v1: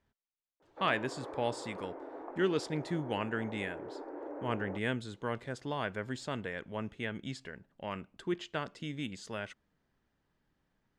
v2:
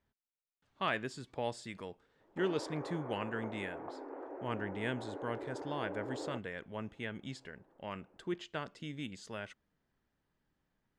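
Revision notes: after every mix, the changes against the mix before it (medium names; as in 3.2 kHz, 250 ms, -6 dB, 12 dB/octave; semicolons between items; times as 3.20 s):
speech -3.5 dB; background: entry +1.60 s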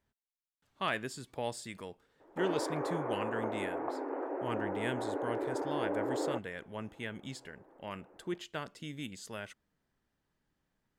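background +8.0 dB; master: remove distance through air 71 m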